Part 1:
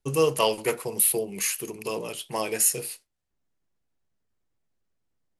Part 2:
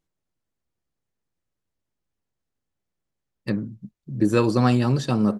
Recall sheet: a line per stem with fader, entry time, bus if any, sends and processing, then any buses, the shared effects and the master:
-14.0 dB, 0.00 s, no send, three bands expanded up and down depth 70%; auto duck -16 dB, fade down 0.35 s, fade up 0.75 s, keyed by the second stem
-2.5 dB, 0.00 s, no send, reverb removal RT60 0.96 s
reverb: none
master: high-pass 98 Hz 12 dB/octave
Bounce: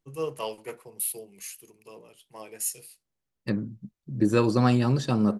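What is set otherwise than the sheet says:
stem 2: missing reverb removal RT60 0.96 s; master: missing high-pass 98 Hz 12 dB/octave

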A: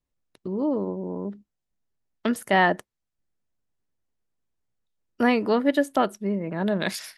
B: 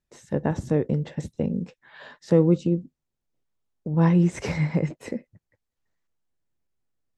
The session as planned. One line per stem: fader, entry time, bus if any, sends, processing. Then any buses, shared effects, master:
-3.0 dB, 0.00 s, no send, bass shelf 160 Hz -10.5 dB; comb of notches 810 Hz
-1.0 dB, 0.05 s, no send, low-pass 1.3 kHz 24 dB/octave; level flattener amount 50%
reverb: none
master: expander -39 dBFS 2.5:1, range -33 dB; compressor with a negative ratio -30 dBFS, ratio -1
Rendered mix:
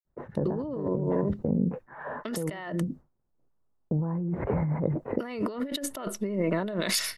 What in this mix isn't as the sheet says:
stem A -3.0 dB -> +4.0 dB; stem B -1.0 dB -> -9.0 dB

